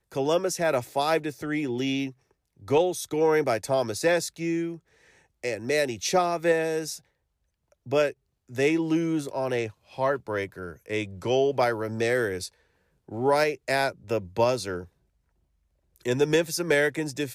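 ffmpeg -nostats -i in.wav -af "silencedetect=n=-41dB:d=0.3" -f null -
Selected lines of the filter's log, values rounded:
silence_start: 2.11
silence_end: 2.63 | silence_duration: 0.52
silence_start: 4.77
silence_end: 5.44 | silence_duration: 0.66
silence_start: 6.98
silence_end: 7.86 | silence_duration: 0.89
silence_start: 8.11
silence_end: 8.50 | silence_duration: 0.39
silence_start: 12.48
silence_end: 13.09 | silence_duration: 0.61
silence_start: 14.85
silence_end: 15.96 | silence_duration: 1.11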